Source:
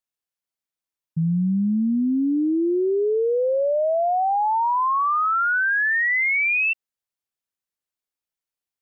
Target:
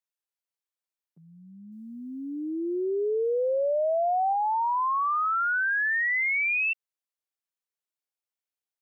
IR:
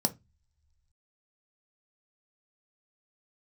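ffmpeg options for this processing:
-filter_complex "[0:a]highpass=f=360:w=0.5412,highpass=f=360:w=1.3066,asettb=1/sr,asplit=3[a][b][c];[a]atrim=end=1.724[d];[b]atrim=start=1.72:end=4.33,asetpts=PTS-STARTPTS,afade=t=in:d=0.004:c=qsin,afade=t=out:st=2.606:d=0.004:c=qsin,highshelf=f=2.3k:g=12[e];[c]atrim=start=4.326[f];[d][e]acrossfade=d=0.004:c1=hsin:c2=qsin[g];[g][f]acrossfade=d=0.004:c1=qsin:c2=hsin,volume=-5dB"

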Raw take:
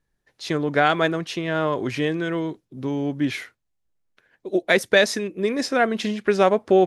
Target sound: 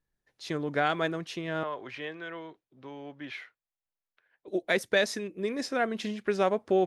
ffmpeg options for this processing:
-filter_complex "[0:a]asettb=1/sr,asplit=3[a][b][c];[a]atrim=end=1.634[d];[b]atrim=start=1.63:end=4.48,asetpts=PTS-STARTPTS,afade=t=in:d=0.004:c=qsin,afade=t=out:st=2.846:d=0.004:c=qsin,acrossover=split=530 4200:gain=0.2 1 0.126[e][f][g];[e][f][g]amix=inputs=3:normalize=0[h];[c]atrim=start=4.476[i];[d][h]acrossfade=d=0.004:c1=hsin:c2=qsin[j];[j][i]acrossfade=d=0.004:c1=qsin:c2=hsin,volume=-8.5dB"

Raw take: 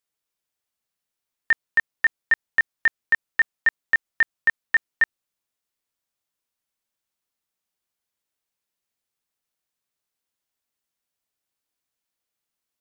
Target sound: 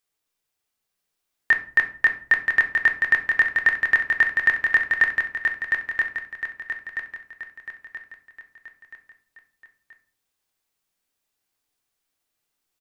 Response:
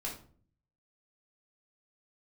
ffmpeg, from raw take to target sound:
-filter_complex "[0:a]aecho=1:1:978|1956|2934|3912|4890:0.596|0.262|0.115|0.0507|0.0223,asplit=2[a][b];[1:a]atrim=start_sample=2205[c];[b][c]afir=irnorm=-1:irlink=0,volume=-2.5dB[d];[a][d]amix=inputs=2:normalize=0"

